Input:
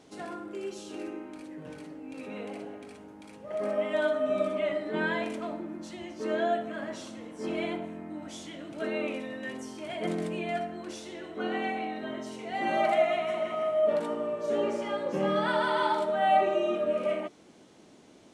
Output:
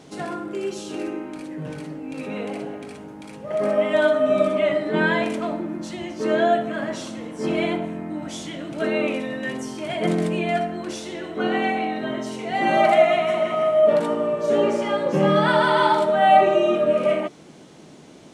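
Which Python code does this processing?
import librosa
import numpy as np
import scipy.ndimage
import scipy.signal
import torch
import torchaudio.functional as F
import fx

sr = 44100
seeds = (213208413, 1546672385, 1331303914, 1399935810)

y = fx.peak_eq(x, sr, hz=150.0, db=10.0, octaves=0.29)
y = F.gain(torch.from_numpy(y), 9.0).numpy()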